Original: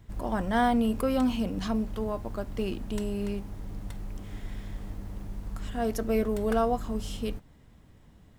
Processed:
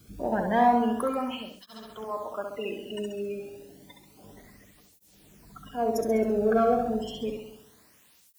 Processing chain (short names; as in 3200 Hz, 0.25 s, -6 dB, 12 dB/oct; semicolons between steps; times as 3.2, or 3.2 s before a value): spectral gate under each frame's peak -25 dB strong; 2.04–4.24 tilt +3.5 dB/oct; in parallel at -8 dB: hard clip -25.5 dBFS, distortion -10 dB; on the sum: added noise white -61 dBFS; flutter echo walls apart 11.5 m, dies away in 0.79 s; on a send at -13 dB: reverb RT60 1.0 s, pre-delay 5 ms; on the sum: tape flanging out of phase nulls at 0.3 Hz, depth 1.1 ms; gain +2 dB